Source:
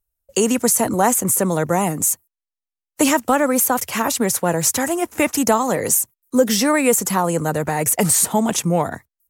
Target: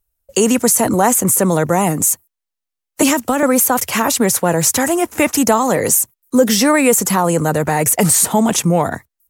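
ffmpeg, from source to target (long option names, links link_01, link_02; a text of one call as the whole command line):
ffmpeg -i in.wav -filter_complex "[0:a]asplit=2[link_01][link_02];[link_02]alimiter=limit=-14dB:level=0:latency=1:release=20,volume=0dB[link_03];[link_01][link_03]amix=inputs=2:normalize=0,asettb=1/sr,asplit=3[link_04][link_05][link_06];[link_04]atrim=end=3.024[link_07];[link_05]atrim=start=3.02:end=3.43,asetpts=PTS-STARTPTS,afade=type=in:duration=0.004:curve=qsin,afade=type=out:start_time=0.406:duration=0.004:curve=qsin,acrossover=split=360|3000[link_08][link_09][link_10];[link_09]acompressor=threshold=-16dB:ratio=6[link_11];[link_08][link_11][link_10]amix=inputs=3:normalize=0[link_12];[link_06]atrim=start=3.426[link_13];[link_07][link_12]acrossfade=duration=0.004:curve1=hsin:curve2=qsin[link_14];[link_14][link_13]acrossfade=duration=0.004:curve1=qsin:curve2=hsin" out.wav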